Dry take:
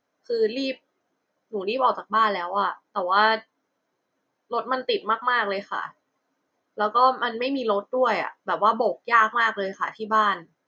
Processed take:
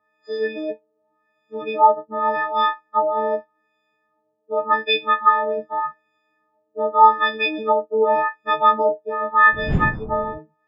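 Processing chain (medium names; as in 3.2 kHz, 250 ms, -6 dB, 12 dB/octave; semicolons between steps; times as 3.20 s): partials quantised in pitch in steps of 6 st; 9.52–10.37 s: wind noise 160 Hz -24 dBFS; LFO low-pass sine 0.85 Hz 520–3000 Hz; trim -1.5 dB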